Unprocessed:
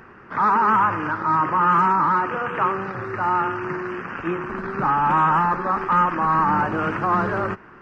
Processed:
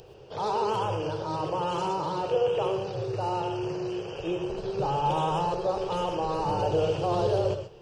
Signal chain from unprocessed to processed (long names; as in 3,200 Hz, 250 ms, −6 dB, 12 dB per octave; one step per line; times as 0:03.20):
drawn EQ curve 130 Hz 0 dB, 240 Hz −19 dB, 480 Hz +7 dB, 810 Hz −4 dB, 1,200 Hz −22 dB, 2,000 Hz −22 dB, 3,100 Hz +8 dB, 4,400 Hz +9 dB, 7,600 Hz +7 dB
reverb whose tail is shaped and stops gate 150 ms rising, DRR 7 dB